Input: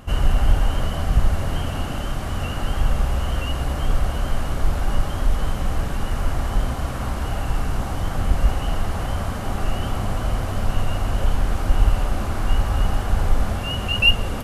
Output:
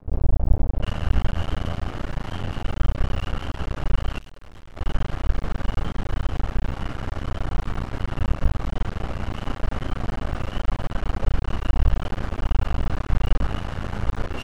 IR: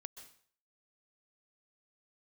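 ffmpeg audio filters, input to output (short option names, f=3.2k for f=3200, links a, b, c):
-filter_complex "[0:a]asplit=2[a][b];[b]adelay=36,volume=-6dB[c];[a][c]amix=inputs=2:normalize=0,acrossover=split=760[d][e];[e]adelay=740[f];[d][f]amix=inputs=2:normalize=0,adynamicsmooth=sensitivity=4.5:basefreq=3.2k,aeval=exprs='max(val(0),0)':c=same,aresample=32000,aresample=44100,asplit=3[g][h][i];[g]afade=t=out:st=4.18:d=0.02[j];[h]aeval=exprs='(tanh(44.7*val(0)+0.35)-tanh(0.35))/44.7':c=same,afade=t=in:st=4.18:d=0.02,afade=t=out:st=4.76:d=0.02[k];[i]afade=t=in:st=4.76:d=0.02[l];[j][k][l]amix=inputs=3:normalize=0"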